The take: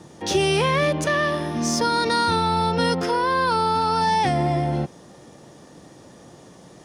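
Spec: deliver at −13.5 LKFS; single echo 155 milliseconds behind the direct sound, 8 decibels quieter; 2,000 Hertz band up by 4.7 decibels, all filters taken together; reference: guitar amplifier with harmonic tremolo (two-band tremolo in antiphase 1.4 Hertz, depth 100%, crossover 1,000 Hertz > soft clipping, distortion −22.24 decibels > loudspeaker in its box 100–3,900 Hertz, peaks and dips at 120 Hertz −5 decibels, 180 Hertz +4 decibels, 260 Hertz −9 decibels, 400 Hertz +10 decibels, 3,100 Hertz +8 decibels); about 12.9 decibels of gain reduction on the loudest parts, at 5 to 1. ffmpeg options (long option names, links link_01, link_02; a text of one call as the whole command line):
ffmpeg -i in.wav -filter_complex "[0:a]equalizer=frequency=2000:width_type=o:gain=5,acompressor=threshold=-31dB:ratio=5,aecho=1:1:155:0.398,acrossover=split=1000[link_01][link_02];[link_01]aeval=exprs='val(0)*(1-1/2+1/2*cos(2*PI*1.4*n/s))':channel_layout=same[link_03];[link_02]aeval=exprs='val(0)*(1-1/2-1/2*cos(2*PI*1.4*n/s))':channel_layout=same[link_04];[link_03][link_04]amix=inputs=2:normalize=0,asoftclip=threshold=-27dB,highpass=100,equalizer=frequency=120:width_type=q:width=4:gain=-5,equalizer=frequency=180:width_type=q:width=4:gain=4,equalizer=frequency=260:width_type=q:width=4:gain=-9,equalizer=frequency=400:width_type=q:width=4:gain=10,equalizer=frequency=3100:width_type=q:width=4:gain=8,lowpass=frequency=3900:width=0.5412,lowpass=frequency=3900:width=1.3066,volume=23dB" out.wav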